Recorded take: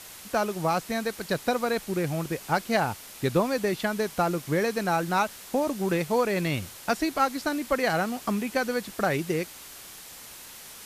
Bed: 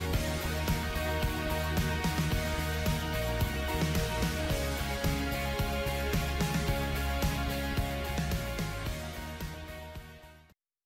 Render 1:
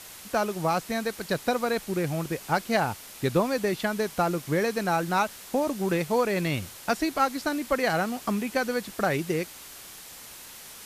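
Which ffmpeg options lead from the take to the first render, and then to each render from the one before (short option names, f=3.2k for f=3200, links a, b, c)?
-af anull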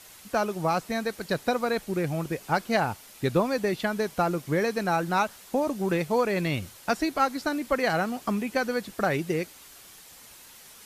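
-af "afftdn=nr=6:nf=-45"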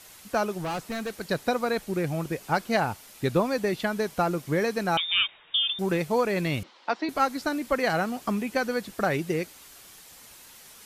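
-filter_complex "[0:a]asettb=1/sr,asplit=3[a][b][c];[a]atrim=end=0.584[d];[b]atrim=start=0.58:end=1.11,asetpts=PTS-STARTPTS,afade=t=in:d=0.004:c=qsin,afade=t=out:st=0.526:d=0.004:c=qsin,volume=28dB,asoftclip=hard,volume=-28dB[e];[c]atrim=start=1.106[f];[d][e]acrossfade=d=0.004:c1=hsin:c2=qsin[g];[g][f]acrossfade=d=0.004:c1=qsin:c2=hsin,asettb=1/sr,asplit=3[h][i][j];[h]atrim=end=4.974[k];[i]atrim=start=4.97:end=5.79,asetpts=PTS-STARTPTS,afade=t=in:d=0.004:c=qsin,afade=t=out:st=0.816:d=0.004:c=qsin,lowpass=f=3.2k:t=q:w=0.5098,lowpass=f=3.2k:t=q:w=0.6013,lowpass=f=3.2k:t=q:w=0.9,lowpass=f=3.2k:t=q:w=2.563,afreqshift=-3800[l];[j]atrim=start=5.786[m];[k][l]acrossfade=d=0.004:c1=hsin:c2=qsin[n];[n][m]acrossfade=d=0.004:c1=qsin:c2=hsin,asettb=1/sr,asplit=3[o][p][q];[o]atrim=end=6.634[r];[p]atrim=start=6.63:end=7.09,asetpts=PTS-STARTPTS,afade=t=in:d=0.004:c=qsin,afade=t=out:st=0.456:d=0.004:c=qsin,highpass=f=290:w=0.5412,highpass=f=290:w=1.3066,equalizer=f=410:t=q:w=4:g=-5,equalizer=f=630:t=q:w=4:g=-3,equalizer=f=950:t=q:w=4:g=5,equalizer=f=1.6k:t=q:w=4:g=-4,equalizer=f=2.6k:t=q:w=4:g=-3,lowpass=f=4.2k:w=0.5412,lowpass=f=4.2k:w=1.3066[s];[q]atrim=start=7.086[t];[r][s]acrossfade=d=0.004:c1=hsin:c2=qsin[u];[u][t]acrossfade=d=0.004:c1=qsin:c2=hsin"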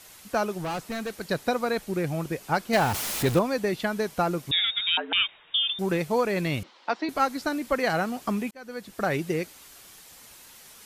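-filter_complex "[0:a]asettb=1/sr,asplit=3[a][b][c];[a]atrim=end=2.734[d];[b]atrim=start=2.73:end=3.39,asetpts=PTS-STARTPTS,afade=t=in:d=0.004:c=qsin,afade=t=out:st=0.656:d=0.004:c=qsin,aeval=exprs='val(0)+0.5*0.0531*sgn(val(0))':c=same[e];[c]atrim=start=3.386[f];[d][e]acrossfade=d=0.004:c1=hsin:c2=qsin[g];[g][f]acrossfade=d=0.004:c1=qsin:c2=hsin,asettb=1/sr,asplit=3[h][i][j];[h]atrim=end=4.514[k];[i]atrim=start=4.51:end=5.13,asetpts=PTS-STARTPTS,afade=t=in:d=0.004:c=qsin,afade=t=out:st=0.616:d=0.004:c=qsin,lowpass=f=3.3k:t=q:w=0.5098,lowpass=f=3.3k:t=q:w=0.6013,lowpass=f=3.3k:t=q:w=0.9,lowpass=f=3.3k:t=q:w=2.563,afreqshift=-3900[l];[j]atrim=start=5.126[m];[k][l]acrossfade=d=0.004:c1=hsin:c2=qsin[n];[n][m]acrossfade=d=0.004:c1=qsin:c2=hsin,asplit=2[o][p];[o]atrim=end=8.51,asetpts=PTS-STARTPTS,afade=t=out:st=8.506:d=0.004:c=hsin[q];[p]atrim=start=8.51,asetpts=PTS-STARTPTS,afade=t=in:d=0.62[r];[q][r]concat=n=2:v=0:a=1"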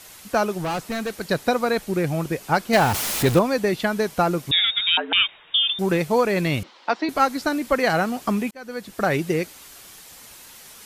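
-af "volume=5dB"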